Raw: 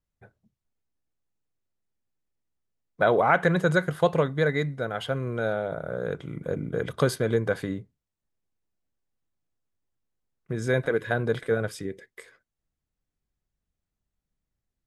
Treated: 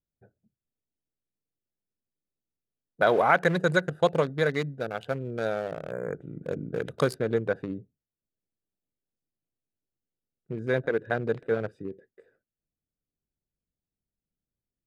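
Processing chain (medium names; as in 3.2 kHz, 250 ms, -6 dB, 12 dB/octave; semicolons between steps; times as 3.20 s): local Wiener filter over 41 samples; bass shelf 110 Hz -11.5 dB; 5.91–6.22 s: time-frequency box 2.4–6.6 kHz -29 dB; treble shelf 4.6 kHz +7.5 dB, from 7.14 s -6 dB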